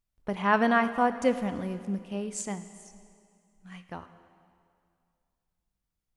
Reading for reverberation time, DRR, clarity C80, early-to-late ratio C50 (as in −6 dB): 2.3 s, 11.0 dB, 13.0 dB, 12.0 dB